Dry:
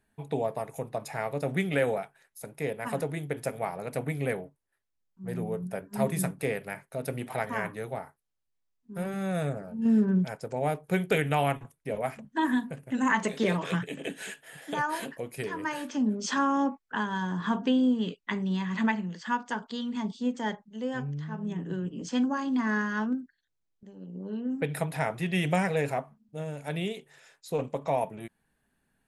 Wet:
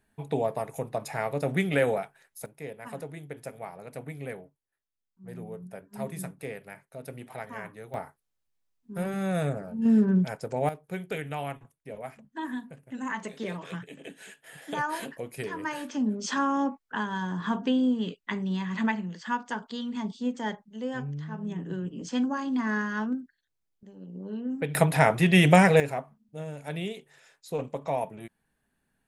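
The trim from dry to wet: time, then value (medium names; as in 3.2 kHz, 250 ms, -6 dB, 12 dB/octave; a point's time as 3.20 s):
+2 dB
from 2.46 s -7.5 dB
from 7.94 s +2 dB
from 10.69 s -8 dB
from 14.44 s -0.5 dB
from 24.75 s +9 dB
from 25.80 s -1.5 dB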